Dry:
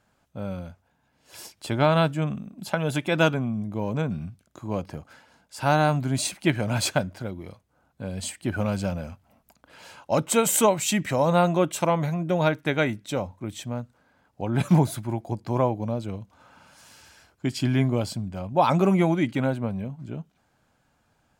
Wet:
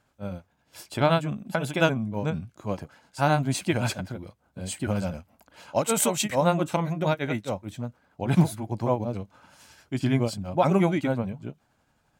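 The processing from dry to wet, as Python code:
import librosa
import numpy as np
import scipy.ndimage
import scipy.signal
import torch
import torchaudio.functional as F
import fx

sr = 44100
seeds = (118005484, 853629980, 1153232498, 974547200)

y = fx.stretch_grains(x, sr, factor=0.57, grain_ms=175.0)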